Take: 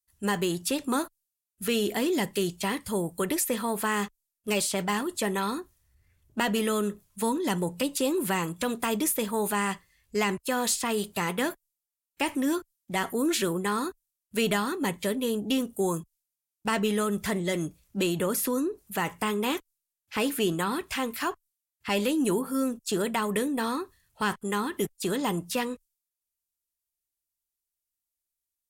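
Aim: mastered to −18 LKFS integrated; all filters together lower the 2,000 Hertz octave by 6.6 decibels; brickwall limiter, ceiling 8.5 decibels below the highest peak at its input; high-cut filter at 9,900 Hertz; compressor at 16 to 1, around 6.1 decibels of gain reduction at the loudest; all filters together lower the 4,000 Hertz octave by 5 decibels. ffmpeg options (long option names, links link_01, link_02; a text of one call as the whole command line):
ffmpeg -i in.wav -af "lowpass=9900,equalizer=frequency=2000:width_type=o:gain=-7.5,equalizer=frequency=4000:width_type=o:gain=-3.5,acompressor=threshold=-29dB:ratio=16,volume=19dB,alimiter=limit=-8.5dB:level=0:latency=1" out.wav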